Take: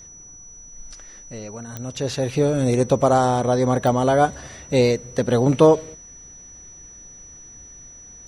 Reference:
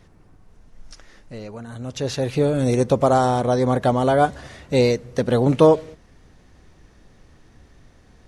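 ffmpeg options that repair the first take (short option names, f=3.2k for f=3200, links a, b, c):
-af "adeclick=t=4,bandreject=f=5.9k:w=30"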